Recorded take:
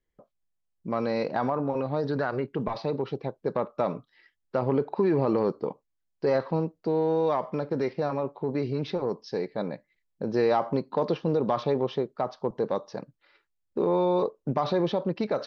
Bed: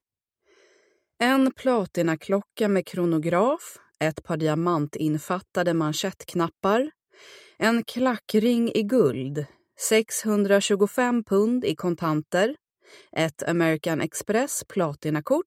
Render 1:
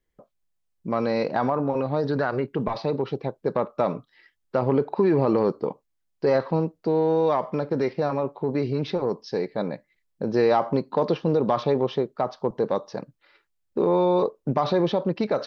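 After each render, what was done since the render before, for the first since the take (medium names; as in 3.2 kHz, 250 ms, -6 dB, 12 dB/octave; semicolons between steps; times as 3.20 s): trim +3.5 dB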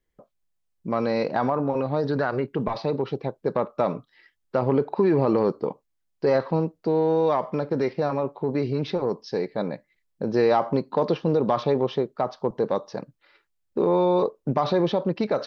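no audible change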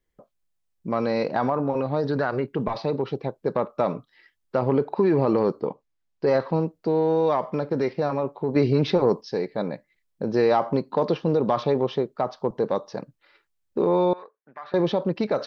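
5.61–6.28 s: distance through air 71 m; 8.56–9.21 s: gain +5.5 dB; 14.13–14.74 s: band-pass filter 1.7 kHz, Q 4.5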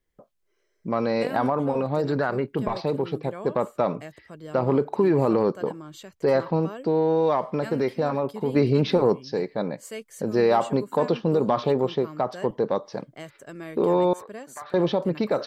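add bed -16.5 dB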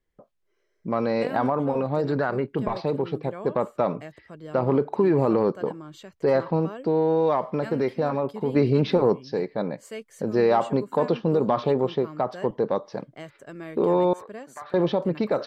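treble shelf 5.8 kHz -9.5 dB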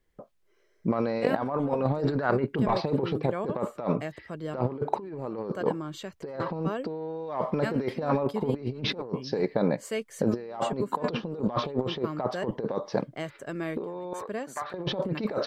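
compressor with a negative ratio -27 dBFS, ratio -0.5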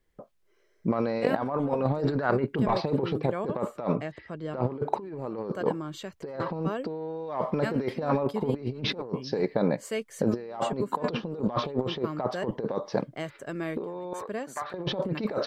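3.95–4.63 s: distance through air 71 m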